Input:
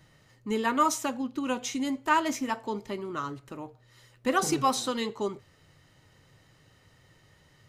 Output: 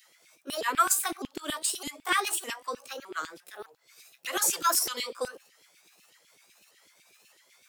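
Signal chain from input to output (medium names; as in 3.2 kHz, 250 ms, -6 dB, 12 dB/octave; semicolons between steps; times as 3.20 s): sawtooth pitch modulation +6.5 st, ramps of 610 ms; pre-emphasis filter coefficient 0.8; LFO high-pass saw down 8 Hz 270–3100 Hz; trim +8.5 dB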